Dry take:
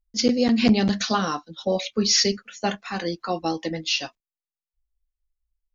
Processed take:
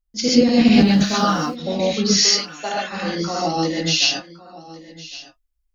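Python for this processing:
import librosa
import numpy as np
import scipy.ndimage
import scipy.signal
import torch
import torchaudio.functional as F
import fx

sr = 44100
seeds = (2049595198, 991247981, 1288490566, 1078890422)

y = fx.sample_gate(x, sr, floor_db=-45.0, at=(0.64, 1.44))
y = fx.highpass(y, sr, hz=440.0, slope=12, at=(2.21, 2.83))
y = fx.high_shelf(y, sr, hz=4800.0, db=10.5, at=(3.49, 4.05))
y = y + 10.0 ** (-18.0 / 20.0) * np.pad(y, (int(1110 * sr / 1000.0), 0))[:len(y)]
y = fx.rev_gated(y, sr, seeds[0], gate_ms=160, shape='rising', drr_db=-5.5)
y = y * 10.0 ** (-2.0 / 20.0)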